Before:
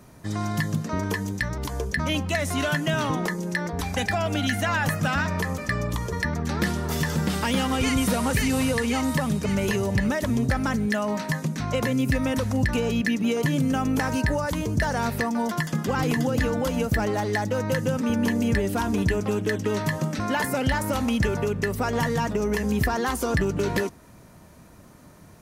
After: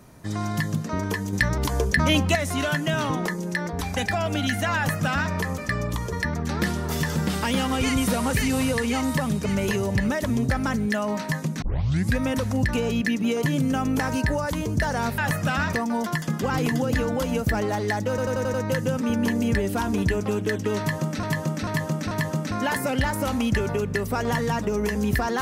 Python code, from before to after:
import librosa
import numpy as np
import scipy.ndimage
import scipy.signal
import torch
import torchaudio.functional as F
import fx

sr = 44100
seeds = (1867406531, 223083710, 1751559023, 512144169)

y = fx.edit(x, sr, fx.clip_gain(start_s=1.33, length_s=1.02, db=5.5),
    fx.duplicate(start_s=4.76, length_s=0.55, to_s=15.18),
    fx.tape_start(start_s=11.62, length_s=0.55),
    fx.stutter(start_s=17.54, slice_s=0.09, count=6),
    fx.repeat(start_s=19.79, length_s=0.44, count=4), tone=tone)